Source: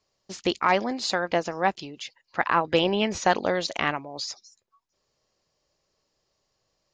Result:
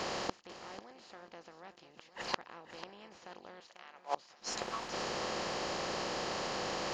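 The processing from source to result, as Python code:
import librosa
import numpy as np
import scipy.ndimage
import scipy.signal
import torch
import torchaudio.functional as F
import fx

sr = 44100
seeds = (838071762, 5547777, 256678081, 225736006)

p1 = fx.bin_compress(x, sr, power=0.4)
p2 = fx.highpass(p1, sr, hz=820.0, slope=12, at=(3.6, 4.15))
p3 = fx.gate_flip(p2, sr, shuts_db=-18.0, range_db=-34)
y = p3 + fx.echo_feedback(p3, sr, ms=493, feedback_pct=16, wet_db=-13, dry=0)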